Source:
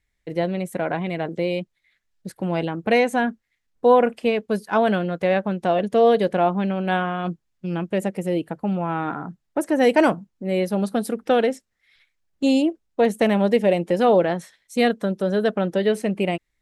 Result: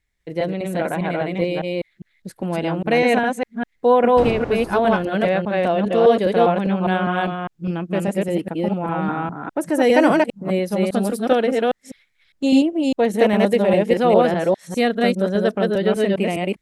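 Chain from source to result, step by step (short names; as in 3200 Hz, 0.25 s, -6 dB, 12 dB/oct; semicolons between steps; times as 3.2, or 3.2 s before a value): reverse delay 0.202 s, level -0.5 dB; 4.16–5.07 wind noise 500 Hz -25 dBFS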